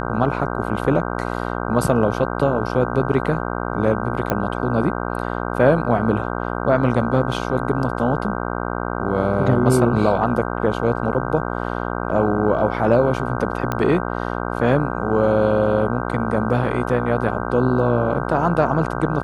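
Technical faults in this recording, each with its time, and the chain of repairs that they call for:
mains buzz 60 Hz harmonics 26 −25 dBFS
0:04.30: click −7 dBFS
0:13.72: click −9 dBFS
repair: click removal
hum removal 60 Hz, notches 26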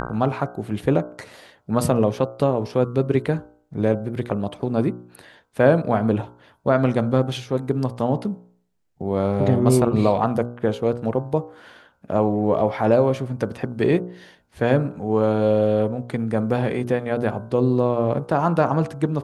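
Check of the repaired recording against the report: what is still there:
none of them is left

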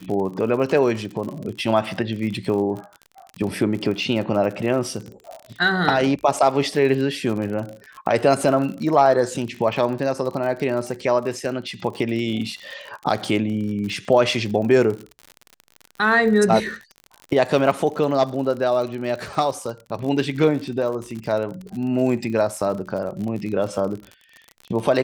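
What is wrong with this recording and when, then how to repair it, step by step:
surface crackle 52 per second −29 dBFS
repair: click removal

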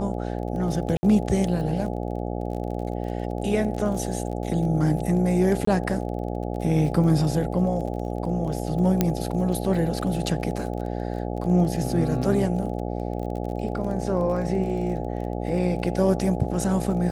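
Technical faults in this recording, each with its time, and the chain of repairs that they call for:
mains buzz 60 Hz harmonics 14 −29 dBFS
surface crackle 27 per second −33 dBFS
0:00.97–0:01.03: drop-out 60 ms
0:05.65–0:05.67: drop-out 24 ms
0:09.01: click −6 dBFS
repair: click removal
hum removal 60 Hz, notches 14
repair the gap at 0:00.97, 60 ms
repair the gap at 0:05.65, 24 ms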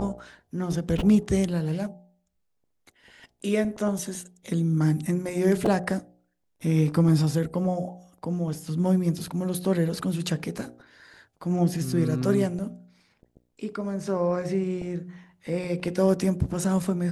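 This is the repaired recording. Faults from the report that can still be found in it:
none of them is left

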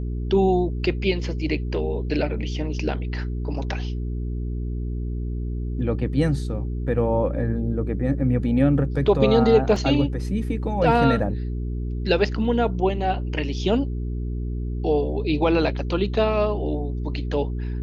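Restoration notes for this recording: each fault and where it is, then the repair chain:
mains hum 60 Hz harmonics 7 −27 dBFS
0:09.76: drop-out 2.8 ms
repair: hum removal 60 Hz, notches 7
repair the gap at 0:09.76, 2.8 ms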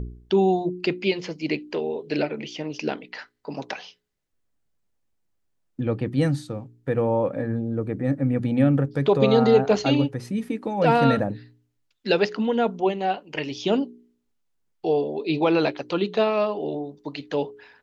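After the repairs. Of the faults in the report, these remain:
none of them is left

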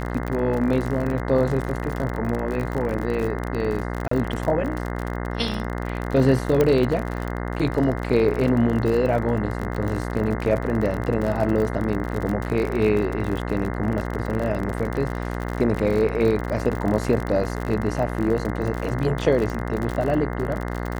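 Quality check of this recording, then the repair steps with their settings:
mains buzz 60 Hz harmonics 35 −28 dBFS
surface crackle 49 per second −26 dBFS
0:04.08–0:04.11: drop-out 34 ms
0:06.61: click −8 dBFS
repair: click removal
hum removal 60 Hz, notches 35
repair the gap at 0:04.08, 34 ms

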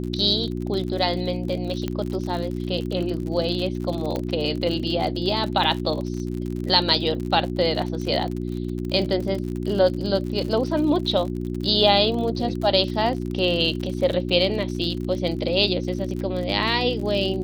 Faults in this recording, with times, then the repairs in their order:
surface crackle 51 per second −29 dBFS
mains hum 60 Hz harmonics 6 −28 dBFS
0:01.88: click −14 dBFS
0:04.16: click −14 dBFS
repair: click removal
hum removal 60 Hz, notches 6

